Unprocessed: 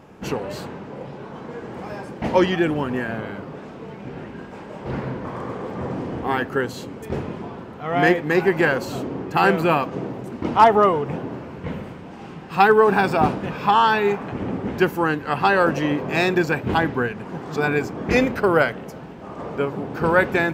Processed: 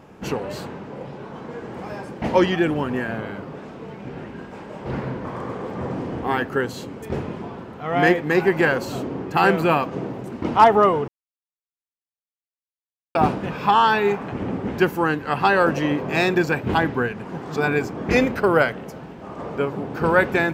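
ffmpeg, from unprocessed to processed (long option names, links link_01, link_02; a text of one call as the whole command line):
ffmpeg -i in.wav -filter_complex "[0:a]asplit=3[link_01][link_02][link_03];[link_01]atrim=end=11.08,asetpts=PTS-STARTPTS,afade=type=out:start_time=11.076:duration=0.004:curve=hsin[link_04];[link_02]atrim=start=11.08:end=13.15,asetpts=PTS-STARTPTS,volume=0[link_05];[link_03]atrim=start=13.15,asetpts=PTS-STARTPTS,afade=type=in:duration=0.004:curve=hsin[link_06];[link_04][link_05][link_06]concat=n=3:v=0:a=1" out.wav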